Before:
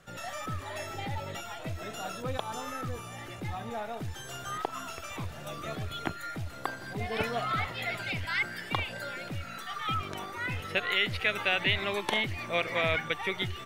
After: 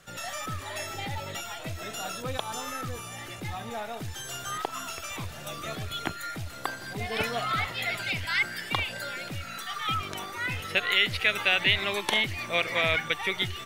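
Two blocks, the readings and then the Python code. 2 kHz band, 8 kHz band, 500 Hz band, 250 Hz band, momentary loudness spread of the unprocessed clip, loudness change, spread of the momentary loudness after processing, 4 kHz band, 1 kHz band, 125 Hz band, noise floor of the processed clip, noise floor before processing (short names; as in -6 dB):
+4.0 dB, +7.5 dB, +0.5 dB, 0.0 dB, 11 LU, +3.5 dB, 13 LU, +5.5 dB, +1.5 dB, 0.0 dB, -41 dBFS, -43 dBFS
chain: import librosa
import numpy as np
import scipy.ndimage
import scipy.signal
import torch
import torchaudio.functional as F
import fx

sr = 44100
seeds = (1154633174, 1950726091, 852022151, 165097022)

y = fx.high_shelf(x, sr, hz=2200.0, db=8.0)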